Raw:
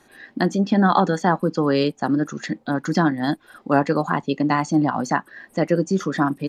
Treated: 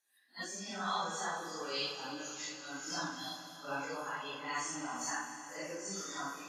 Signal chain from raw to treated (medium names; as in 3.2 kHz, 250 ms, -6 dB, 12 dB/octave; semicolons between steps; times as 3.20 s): phase randomisation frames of 200 ms; spectral noise reduction 18 dB; pre-emphasis filter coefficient 0.97; Schroeder reverb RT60 3.9 s, combs from 29 ms, DRR 5.5 dB